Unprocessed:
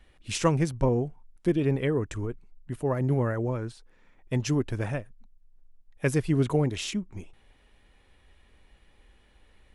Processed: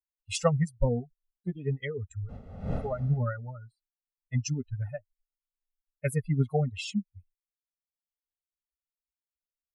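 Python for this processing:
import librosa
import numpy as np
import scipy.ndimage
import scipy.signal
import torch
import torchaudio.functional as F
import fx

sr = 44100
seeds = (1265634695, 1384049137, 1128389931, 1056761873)

y = fx.bin_expand(x, sr, power=3.0)
y = fx.dmg_wind(y, sr, seeds[0], corner_hz=280.0, level_db=-37.0, at=(2.28, 3.18), fade=0.02)
y = fx.dynamic_eq(y, sr, hz=250.0, q=1.7, threshold_db=-44.0, ratio=4.0, max_db=3)
y = y + 0.97 * np.pad(y, (int(1.5 * sr / 1000.0), 0))[:len(y)]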